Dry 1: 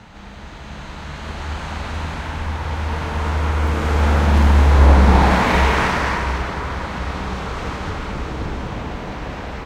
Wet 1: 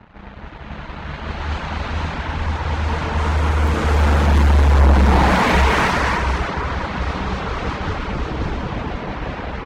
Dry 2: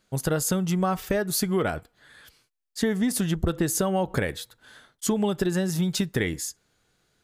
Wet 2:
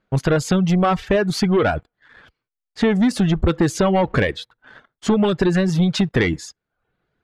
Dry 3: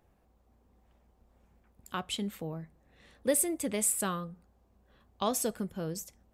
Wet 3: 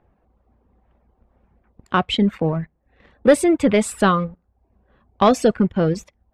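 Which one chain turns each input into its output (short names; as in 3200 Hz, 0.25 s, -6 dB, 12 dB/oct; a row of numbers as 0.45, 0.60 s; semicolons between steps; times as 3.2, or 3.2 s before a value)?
sample leveller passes 2; low-pass opened by the level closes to 2000 Hz, open at -7.5 dBFS; reverb removal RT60 0.52 s; match loudness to -19 LUFS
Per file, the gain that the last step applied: -4.0, +4.0, +11.0 dB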